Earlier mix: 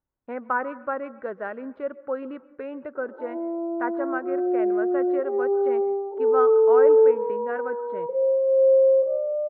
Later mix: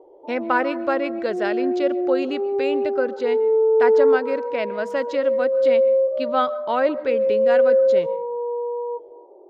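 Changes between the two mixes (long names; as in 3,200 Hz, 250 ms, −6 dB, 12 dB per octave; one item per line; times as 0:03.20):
speech: remove transistor ladder low-pass 1,700 Hz, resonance 40%
background: entry −2.95 s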